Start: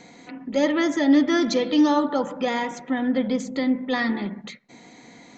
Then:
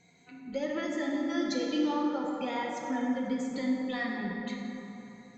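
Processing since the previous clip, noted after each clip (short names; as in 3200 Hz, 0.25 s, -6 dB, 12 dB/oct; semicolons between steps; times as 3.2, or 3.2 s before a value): per-bin expansion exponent 1.5; compressor 3:1, threshold -33 dBFS, peak gain reduction 14 dB; plate-style reverb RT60 3.5 s, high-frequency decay 0.45×, DRR -2 dB; gain -2 dB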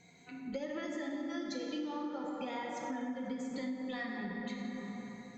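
compressor 6:1, threshold -38 dBFS, peak gain reduction 13 dB; gain +1.5 dB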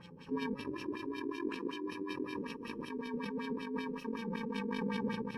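FFT order left unsorted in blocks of 64 samples; negative-ratio compressor -44 dBFS, ratio -1; LFO low-pass sine 5.3 Hz 360–3400 Hz; gain +6.5 dB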